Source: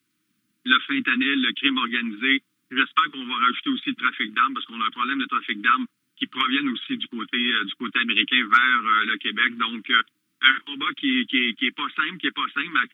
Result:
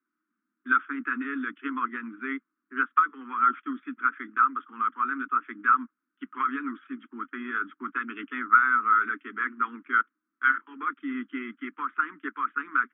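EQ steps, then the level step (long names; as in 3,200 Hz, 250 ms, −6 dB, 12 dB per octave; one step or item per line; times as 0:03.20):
elliptic band-pass filter 230–1,400 Hz, stop band 60 dB
high-frequency loss of the air 110 metres
spectral tilt +3.5 dB per octave
−1.5 dB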